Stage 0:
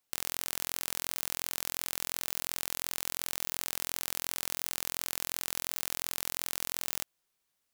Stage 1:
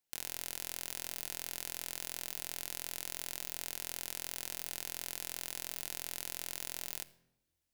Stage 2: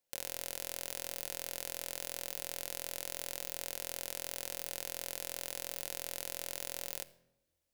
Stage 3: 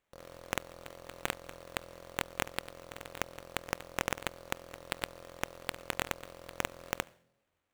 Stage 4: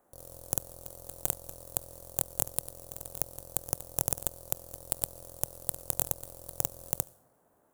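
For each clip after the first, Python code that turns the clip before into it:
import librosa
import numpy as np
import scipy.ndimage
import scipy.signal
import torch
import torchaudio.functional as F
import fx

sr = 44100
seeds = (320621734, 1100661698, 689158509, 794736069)

y1 = fx.peak_eq(x, sr, hz=1200.0, db=-11.0, octaves=0.23)
y1 = fx.room_shoebox(y1, sr, seeds[0], volume_m3=3700.0, walls='furnished', distance_m=0.79)
y1 = F.gain(torch.from_numpy(y1), -6.0).numpy()
y2 = fx.peak_eq(y1, sr, hz=550.0, db=12.5, octaves=0.4)
y3 = scipy.signal.sosfilt(scipy.signal.butter(4, 56.0, 'highpass', fs=sr, output='sos'), y2)
y3 = fx.sample_hold(y3, sr, seeds[1], rate_hz=5100.0, jitter_pct=20)
y3 = F.gain(torch.from_numpy(y3), 1.5).numpy()
y4 = fx.dmg_noise_band(y3, sr, seeds[2], low_hz=170.0, high_hz=1700.0, level_db=-65.0)
y4 = fx.curve_eq(y4, sr, hz=(120.0, 190.0, 740.0, 1100.0, 2200.0, 10000.0), db=(0, -10, -7, -16, -24, 10))
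y4 = F.gain(torch.from_numpy(y4), 6.0).numpy()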